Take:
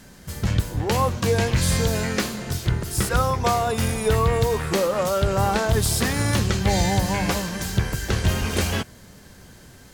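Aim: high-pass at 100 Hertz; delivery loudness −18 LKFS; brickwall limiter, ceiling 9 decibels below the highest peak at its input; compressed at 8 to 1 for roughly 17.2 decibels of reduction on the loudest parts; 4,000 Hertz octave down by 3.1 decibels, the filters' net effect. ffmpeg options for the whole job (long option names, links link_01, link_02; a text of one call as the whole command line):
ffmpeg -i in.wav -af "highpass=100,equalizer=frequency=4000:width_type=o:gain=-4,acompressor=threshold=-36dB:ratio=8,volume=24dB,alimiter=limit=-9dB:level=0:latency=1" out.wav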